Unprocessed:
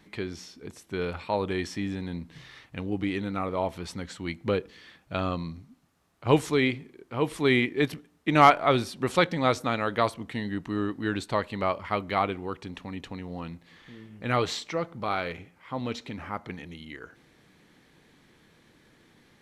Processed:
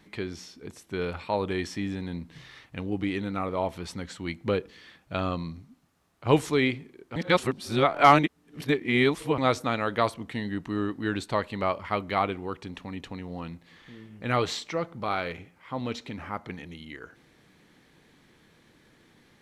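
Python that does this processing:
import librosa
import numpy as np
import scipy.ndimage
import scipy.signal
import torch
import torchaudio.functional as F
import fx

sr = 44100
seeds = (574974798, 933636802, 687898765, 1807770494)

y = fx.edit(x, sr, fx.reverse_span(start_s=7.16, length_s=2.22), tone=tone)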